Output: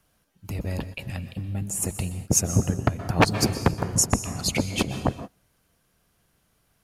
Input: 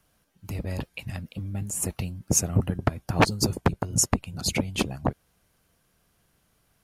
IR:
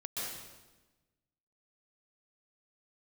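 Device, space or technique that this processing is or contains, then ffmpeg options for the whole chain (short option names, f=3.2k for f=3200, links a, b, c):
keyed gated reverb: -filter_complex "[0:a]asplit=3[a][b][c];[1:a]atrim=start_sample=2205[d];[b][d]afir=irnorm=-1:irlink=0[e];[c]apad=whole_len=301268[f];[e][f]sidechaingate=range=-33dB:threshold=-43dB:ratio=16:detection=peak,volume=-10.5dB[g];[a][g]amix=inputs=2:normalize=0"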